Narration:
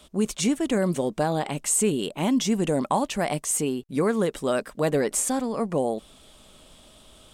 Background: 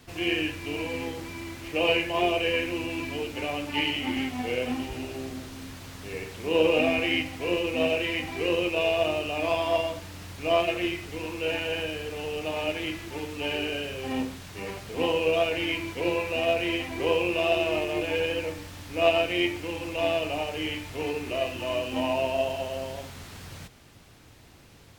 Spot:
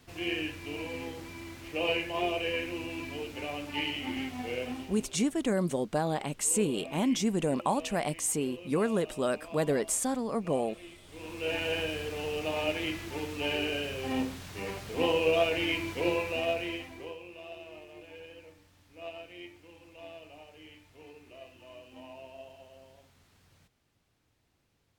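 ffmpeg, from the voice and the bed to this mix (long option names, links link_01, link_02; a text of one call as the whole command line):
ffmpeg -i stem1.wav -i stem2.wav -filter_complex "[0:a]adelay=4750,volume=-5dB[link_01];[1:a]volume=13dB,afade=type=out:start_time=4.61:duration=0.59:silence=0.188365,afade=type=in:start_time=11.02:duration=0.64:silence=0.112202,afade=type=out:start_time=16.03:duration=1.13:silence=0.105925[link_02];[link_01][link_02]amix=inputs=2:normalize=0" out.wav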